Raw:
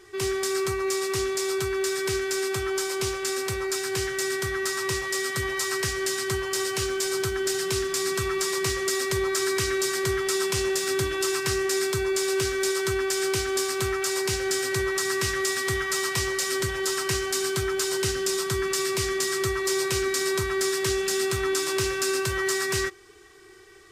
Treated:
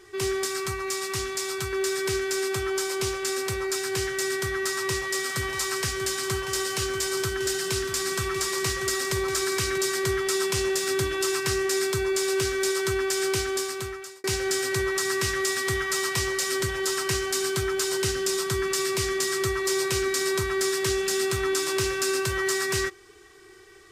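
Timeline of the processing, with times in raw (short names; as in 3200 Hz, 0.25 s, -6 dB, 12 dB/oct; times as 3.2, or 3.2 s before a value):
0.45–1.73 bell 440 Hz -7.5 dB 0.79 oct
4.55–9.78 echo 0.639 s -10.5 dB
13.41–14.24 fade out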